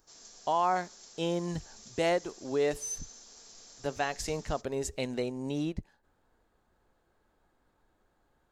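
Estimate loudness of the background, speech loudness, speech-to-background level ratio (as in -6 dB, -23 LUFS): -46.0 LUFS, -33.0 LUFS, 13.0 dB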